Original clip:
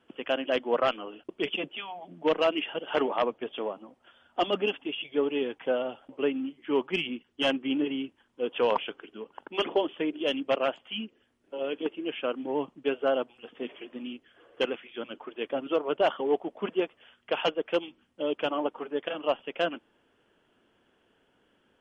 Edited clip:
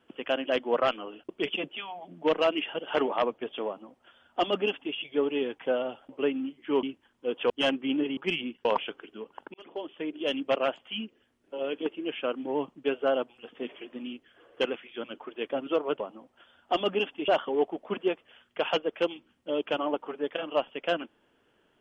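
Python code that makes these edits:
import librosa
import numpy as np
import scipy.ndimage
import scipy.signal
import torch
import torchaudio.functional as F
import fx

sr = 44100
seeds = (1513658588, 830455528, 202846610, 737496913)

y = fx.edit(x, sr, fx.duplicate(start_s=3.67, length_s=1.28, to_s=16.0),
    fx.swap(start_s=6.83, length_s=0.48, other_s=7.98, other_length_s=0.67),
    fx.fade_in_span(start_s=9.54, length_s=0.85), tone=tone)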